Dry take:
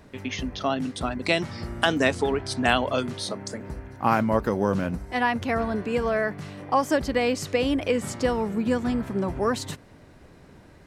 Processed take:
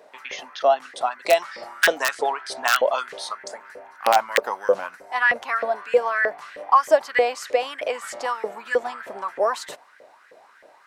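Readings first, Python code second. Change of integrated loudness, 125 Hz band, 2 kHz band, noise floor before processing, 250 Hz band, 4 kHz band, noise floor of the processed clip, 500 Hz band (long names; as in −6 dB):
+3.0 dB, below −25 dB, +5.5 dB, −51 dBFS, −17.5 dB, +0.5 dB, −53 dBFS, +3.5 dB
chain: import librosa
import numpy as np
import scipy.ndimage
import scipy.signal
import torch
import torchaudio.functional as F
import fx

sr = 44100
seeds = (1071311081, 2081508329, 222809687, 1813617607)

y = (np.mod(10.0 ** (8.5 / 20.0) * x + 1.0, 2.0) - 1.0) / 10.0 ** (8.5 / 20.0)
y = fx.filter_lfo_highpass(y, sr, shape='saw_up', hz=3.2, low_hz=480.0, high_hz=1900.0, q=5.7)
y = y * 10.0 ** (-1.5 / 20.0)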